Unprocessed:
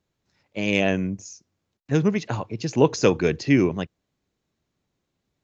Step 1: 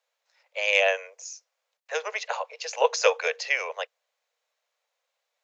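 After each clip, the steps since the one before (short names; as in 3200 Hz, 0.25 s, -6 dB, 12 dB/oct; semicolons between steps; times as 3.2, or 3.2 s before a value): steep high-pass 480 Hz 96 dB/oct; bell 2300 Hz +2.5 dB 0.81 oct; gain +1.5 dB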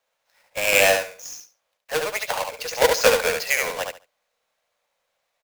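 half-waves squared off; on a send: feedback echo 71 ms, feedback 19%, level -4.5 dB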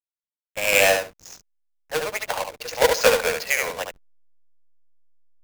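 backlash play -32 dBFS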